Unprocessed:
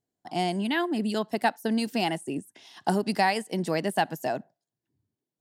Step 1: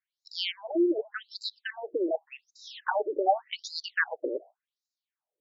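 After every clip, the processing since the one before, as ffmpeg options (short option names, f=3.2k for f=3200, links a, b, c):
-af "afftfilt=real='re*between(b*sr/1024,400*pow(5400/400,0.5+0.5*sin(2*PI*0.87*pts/sr))/1.41,400*pow(5400/400,0.5+0.5*sin(2*PI*0.87*pts/sr))*1.41)':imag='im*between(b*sr/1024,400*pow(5400/400,0.5+0.5*sin(2*PI*0.87*pts/sr))/1.41,400*pow(5400/400,0.5+0.5*sin(2*PI*0.87*pts/sr))*1.41)':win_size=1024:overlap=0.75,volume=7.5dB"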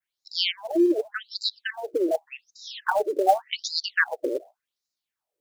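-filter_complex "[0:a]adynamicequalizer=threshold=0.00398:dfrequency=5500:dqfactor=0.96:tfrequency=5500:tqfactor=0.96:attack=5:release=100:ratio=0.375:range=2.5:mode=boostabove:tftype=bell,acrossover=split=510|930|3500[a][b][c][d];[b]acrusher=bits=4:mode=log:mix=0:aa=0.000001[e];[a][e][c][d]amix=inputs=4:normalize=0,volume=4.5dB"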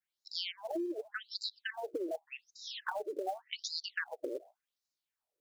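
-af "acompressor=threshold=-30dB:ratio=6,volume=-5dB"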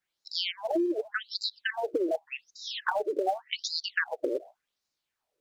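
-af "highshelf=f=7.3k:g=-10,volume=9dB"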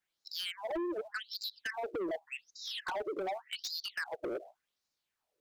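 -af "asoftclip=type=tanh:threshold=-30.5dB,volume=-2dB"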